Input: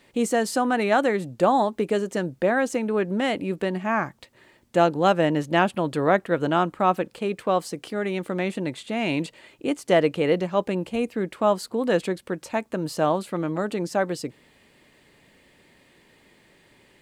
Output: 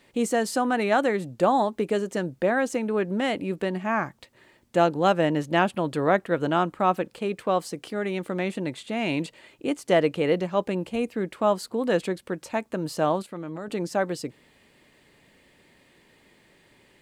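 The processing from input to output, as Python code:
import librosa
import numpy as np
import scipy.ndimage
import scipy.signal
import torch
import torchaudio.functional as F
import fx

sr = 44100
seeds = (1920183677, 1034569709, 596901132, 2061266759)

y = fx.level_steps(x, sr, step_db=11, at=(13.22, 13.7))
y = F.gain(torch.from_numpy(y), -1.5).numpy()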